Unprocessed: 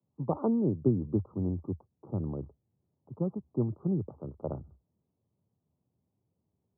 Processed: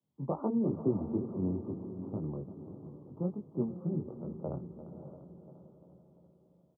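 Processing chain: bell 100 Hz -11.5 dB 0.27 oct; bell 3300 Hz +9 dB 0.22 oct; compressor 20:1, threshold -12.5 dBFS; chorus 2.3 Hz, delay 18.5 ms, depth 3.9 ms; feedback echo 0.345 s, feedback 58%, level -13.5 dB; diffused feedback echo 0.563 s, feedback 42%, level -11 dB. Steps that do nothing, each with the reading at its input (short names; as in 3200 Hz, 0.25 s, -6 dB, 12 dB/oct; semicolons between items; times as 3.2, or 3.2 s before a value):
bell 3300 Hz: input band ends at 850 Hz; compressor, threshold -12.5 dBFS: input peak -15.0 dBFS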